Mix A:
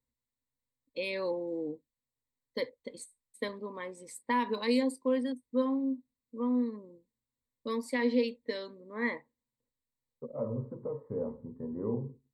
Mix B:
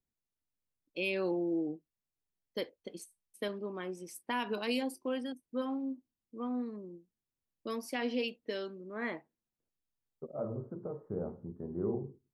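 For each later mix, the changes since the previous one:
master: remove ripple EQ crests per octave 1, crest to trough 14 dB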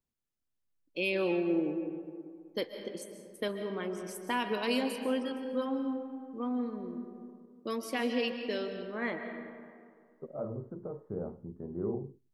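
reverb: on, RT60 2.2 s

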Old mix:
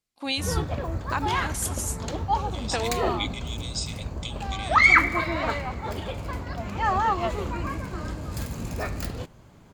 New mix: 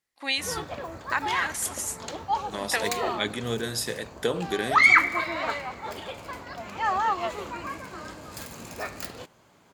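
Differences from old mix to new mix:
first voice: add bell 1900 Hz +14 dB 0.37 oct; second voice: remove brick-wall FIR band-pass 2000–8600 Hz; master: add HPF 580 Hz 6 dB/oct

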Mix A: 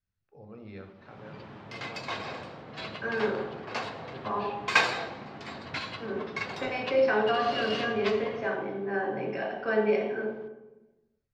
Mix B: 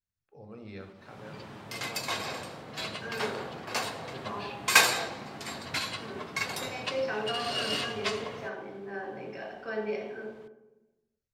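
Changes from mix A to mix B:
second voice -8.5 dB; master: remove air absorption 180 m

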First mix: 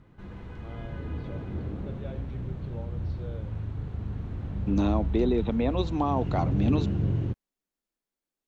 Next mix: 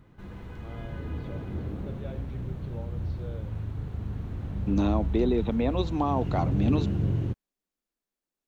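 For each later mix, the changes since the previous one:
background: remove air absorption 55 m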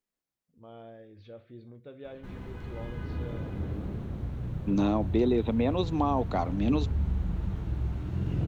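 background: entry +2.05 s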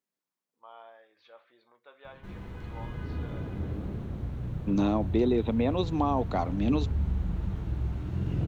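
first voice: add resonant high-pass 980 Hz, resonance Q 3.4

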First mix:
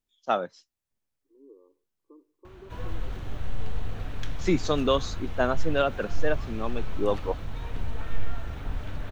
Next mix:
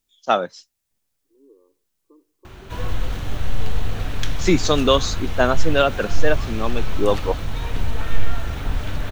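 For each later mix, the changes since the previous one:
first voice +6.5 dB; background +8.5 dB; master: add high shelf 3200 Hz +8 dB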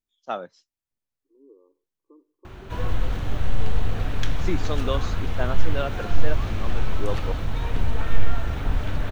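first voice -11.0 dB; master: add high shelf 3200 Hz -8 dB

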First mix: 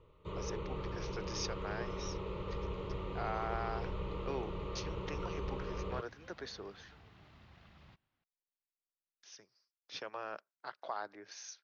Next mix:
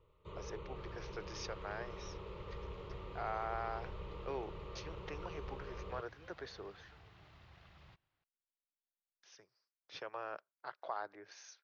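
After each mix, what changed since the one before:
speech: add high shelf 4100 Hz -11.5 dB; first sound -6.0 dB; master: add bell 230 Hz -10 dB 0.57 oct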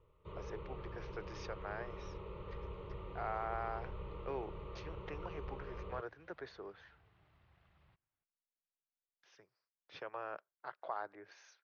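second sound -9.5 dB; master: add tone controls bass +1 dB, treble -12 dB

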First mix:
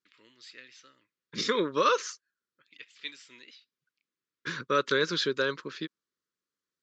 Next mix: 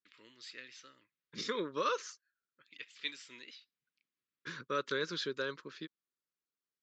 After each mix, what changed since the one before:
second voice -9.0 dB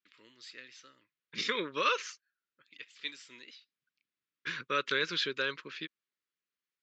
second voice: add bell 2500 Hz +13.5 dB 1.2 oct

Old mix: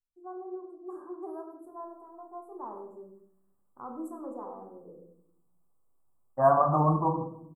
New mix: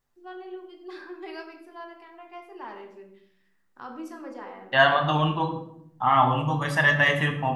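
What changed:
second voice: entry -1.65 s; master: remove Chebyshev band-stop 1200–7800 Hz, order 4

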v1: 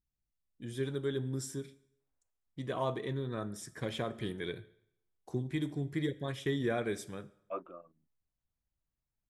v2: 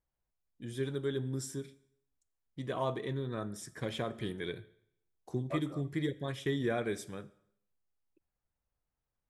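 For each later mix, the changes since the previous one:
second voice: entry -2.00 s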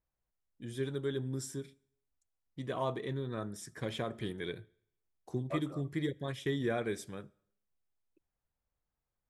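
first voice: send -8.0 dB

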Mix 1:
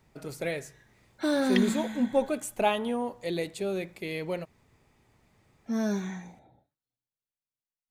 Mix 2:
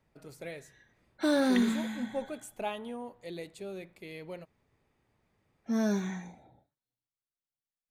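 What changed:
first voice -10.0 dB; second voice: add air absorption 450 m

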